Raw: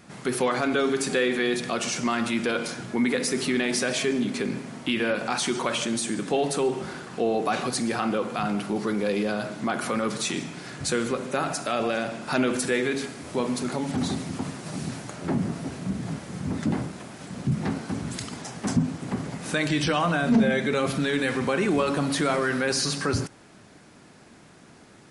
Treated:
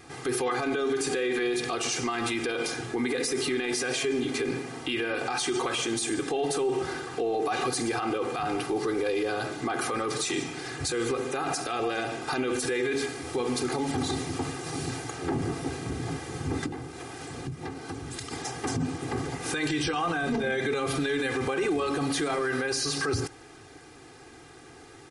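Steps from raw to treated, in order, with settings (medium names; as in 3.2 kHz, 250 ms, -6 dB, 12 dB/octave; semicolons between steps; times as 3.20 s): comb 2.5 ms, depth 99%; 16.66–18.31 s: compression 5:1, threshold -34 dBFS, peak gain reduction 12.5 dB; peak limiter -20 dBFS, peak gain reduction 11 dB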